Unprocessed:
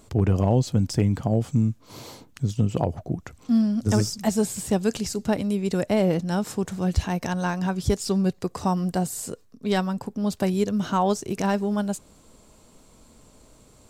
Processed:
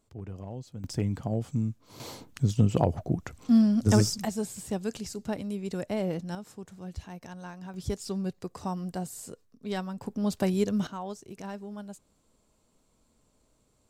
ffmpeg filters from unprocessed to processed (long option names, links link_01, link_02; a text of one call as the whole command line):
ffmpeg -i in.wav -af "asetnsamples=nb_out_samples=441:pad=0,asendcmd='0.84 volume volume -7.5dB;2 volume volume 0dB;4.25 volume volume -9dB;6.35 volume volume -16.5dB;7.74 volume volume -9.5dB;10.02 volume volume -3dB;10.87 volume volume -15.5dB',volume=-19.5dB" out.wav